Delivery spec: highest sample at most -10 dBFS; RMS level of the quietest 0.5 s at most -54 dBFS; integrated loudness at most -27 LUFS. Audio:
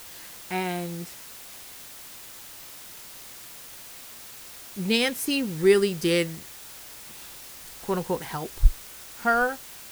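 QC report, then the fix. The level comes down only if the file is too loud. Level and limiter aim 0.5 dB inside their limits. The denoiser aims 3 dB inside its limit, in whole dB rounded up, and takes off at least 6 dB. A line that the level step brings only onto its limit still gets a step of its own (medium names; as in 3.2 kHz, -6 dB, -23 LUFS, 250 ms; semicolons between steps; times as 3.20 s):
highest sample -4.0 dBFS: fail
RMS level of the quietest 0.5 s -44 dBFS: fail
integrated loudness -26.0 LUFS: fail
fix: noise reduction 12 dB, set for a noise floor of -44 dBFS; trim -1.5 dB; peak limiter -10.5 dBFS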